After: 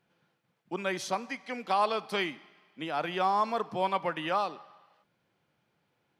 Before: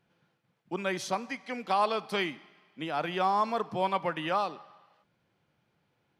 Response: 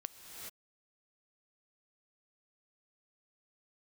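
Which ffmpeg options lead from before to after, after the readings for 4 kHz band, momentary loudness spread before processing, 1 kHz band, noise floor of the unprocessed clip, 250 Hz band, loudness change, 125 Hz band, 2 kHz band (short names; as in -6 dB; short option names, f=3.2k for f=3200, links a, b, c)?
0.0 dB, 10 LU, 0.0 dB, -76 dBFS, -1.5 dB, -0.5 dB, -2.5 dB, 0.0 dB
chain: -af "lowshelf=f=120:g=-7.5"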